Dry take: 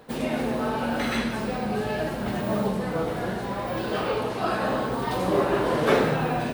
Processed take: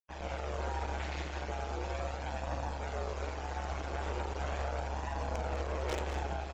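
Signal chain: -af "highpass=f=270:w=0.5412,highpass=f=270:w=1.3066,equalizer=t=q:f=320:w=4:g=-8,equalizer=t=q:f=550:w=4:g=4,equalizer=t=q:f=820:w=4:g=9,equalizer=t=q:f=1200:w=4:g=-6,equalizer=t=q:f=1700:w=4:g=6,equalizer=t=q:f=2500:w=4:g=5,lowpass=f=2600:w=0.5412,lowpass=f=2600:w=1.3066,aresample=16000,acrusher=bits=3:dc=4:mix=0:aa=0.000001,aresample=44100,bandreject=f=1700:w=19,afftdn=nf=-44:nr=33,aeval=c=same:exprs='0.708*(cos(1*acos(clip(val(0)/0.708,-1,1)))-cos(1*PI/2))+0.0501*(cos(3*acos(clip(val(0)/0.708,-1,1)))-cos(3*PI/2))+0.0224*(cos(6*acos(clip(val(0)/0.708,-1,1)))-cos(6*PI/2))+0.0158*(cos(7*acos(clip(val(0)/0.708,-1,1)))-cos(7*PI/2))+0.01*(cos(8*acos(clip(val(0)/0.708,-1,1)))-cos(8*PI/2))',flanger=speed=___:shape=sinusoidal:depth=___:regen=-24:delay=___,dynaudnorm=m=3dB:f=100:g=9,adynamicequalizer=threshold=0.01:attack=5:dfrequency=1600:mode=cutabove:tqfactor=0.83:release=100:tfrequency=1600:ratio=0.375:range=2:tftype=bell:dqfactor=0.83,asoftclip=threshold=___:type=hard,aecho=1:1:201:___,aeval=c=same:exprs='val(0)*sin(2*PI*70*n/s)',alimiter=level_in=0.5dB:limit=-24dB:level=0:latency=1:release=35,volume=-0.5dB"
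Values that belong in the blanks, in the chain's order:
0.39, 1.7, 1.1, -13.5dB, 0.141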